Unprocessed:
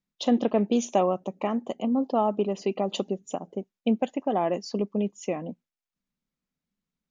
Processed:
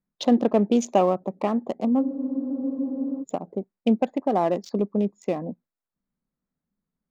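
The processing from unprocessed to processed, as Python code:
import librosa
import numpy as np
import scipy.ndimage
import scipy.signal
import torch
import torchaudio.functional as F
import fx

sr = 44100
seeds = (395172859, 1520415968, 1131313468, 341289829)

y = fx.wiener(x, sr, points=15)
y = fx.spec_freeze(y, sr, seeds[0], at_s=2.04, hold_s=1.18)
y = F.gain(torch.from_numpy(y), 3.5).numpy()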